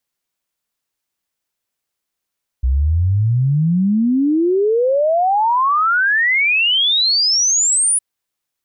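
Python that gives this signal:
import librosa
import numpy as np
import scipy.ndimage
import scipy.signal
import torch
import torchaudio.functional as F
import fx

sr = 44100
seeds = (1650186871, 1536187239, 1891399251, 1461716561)

y = fx.ess(sr, length_s=5.36, from_hz=61.0, to_hz=10000.0, level_db=-12.0)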